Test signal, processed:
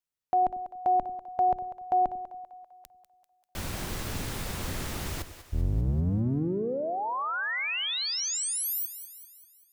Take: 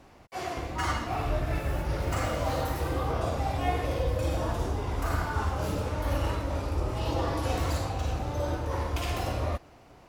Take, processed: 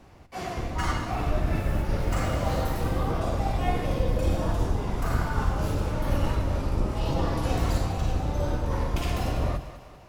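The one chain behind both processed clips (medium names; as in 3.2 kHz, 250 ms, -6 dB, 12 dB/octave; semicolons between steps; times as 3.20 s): octave divider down 1 oct, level +3 dB; two-band feedback delay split 500 Hz, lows 95 ms, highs 196 ms, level -12 dB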